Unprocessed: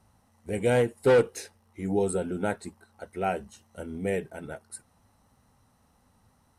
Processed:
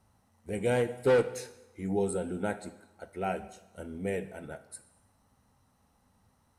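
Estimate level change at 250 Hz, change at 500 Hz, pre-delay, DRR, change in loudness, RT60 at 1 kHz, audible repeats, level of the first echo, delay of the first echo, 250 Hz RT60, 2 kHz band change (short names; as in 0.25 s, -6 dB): -3.5 dB, -4.0 dB, 6 ms, 11.0 dB, -4.0 dB, 0.95 s, none, none, none, 0.95 s, -4.0 dB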